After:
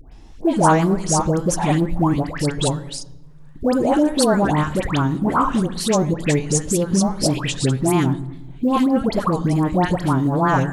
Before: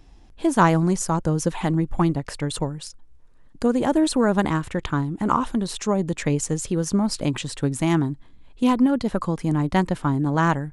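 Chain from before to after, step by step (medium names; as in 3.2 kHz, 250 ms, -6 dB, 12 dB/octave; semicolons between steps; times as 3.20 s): dynamic bell 670 Hz, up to +5 dB, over -34 dBFS, Q 1.1; in parallel at -2 dB: compressor with a negative ratio -25 dBFS, ratio -1; on the sum: phase dispersion highs, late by 120 ms, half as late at 1.2 kHz; wow and flutter 93 cents; short-mantissa float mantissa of 6-bit; on a send at -16 dB: reverberation RT60 1.1 s, pre-delay 3 ms; on the sum: trim -1 dB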